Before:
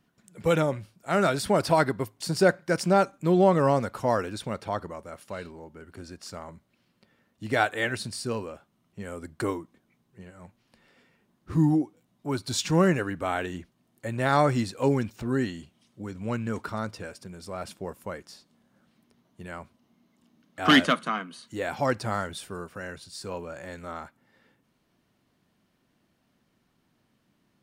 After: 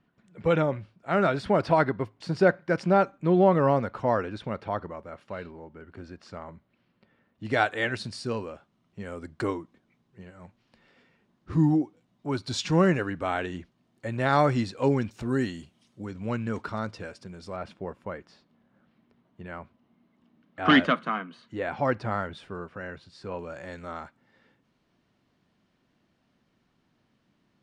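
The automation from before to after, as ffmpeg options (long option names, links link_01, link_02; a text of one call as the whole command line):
ffmpeg -i in.wav -af "asetnsamples=nb_out_samples=441:pad=0,asendcmd='7.45 lowpass f 5400;15.11 lowpass f 10000;16.05 lowpass f 5400;17.56 lowpass f 2700;23.39 lowpass f 5700',lowpass=2900" out.wav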